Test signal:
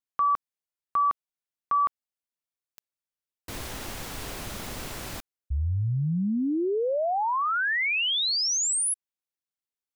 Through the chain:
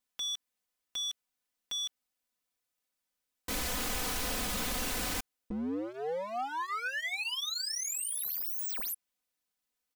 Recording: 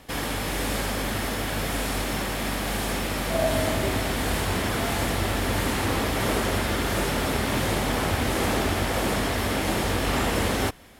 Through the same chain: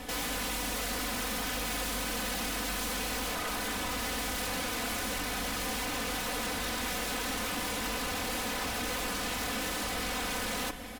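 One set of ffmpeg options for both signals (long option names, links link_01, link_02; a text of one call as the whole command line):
ffmpeg -i in.wav -af "acompressor=threshold=-30dB:ratio=8:attack=0.29:release=24:knee=1:detection=rms,aeval=exprs='0.015*(abs(mod(val(0)/0.015+3,4)-2)-1)':channel_layout=same,aecho=1:1:4:0.74,volume=5.5dB" out.wav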